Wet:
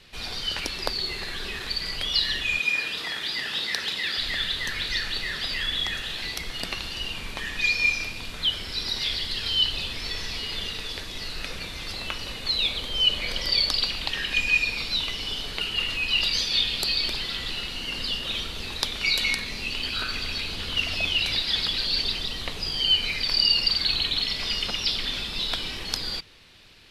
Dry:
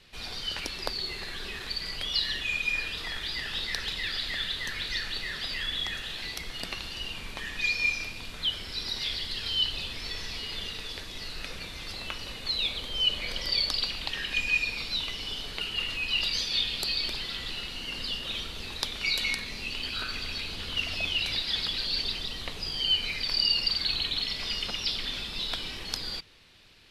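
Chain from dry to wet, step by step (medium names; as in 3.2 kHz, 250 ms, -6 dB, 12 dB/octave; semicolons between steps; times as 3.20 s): 2.59–4.18 s: high-pass 170 Hz 12 dB/octave; trim +4.5 dB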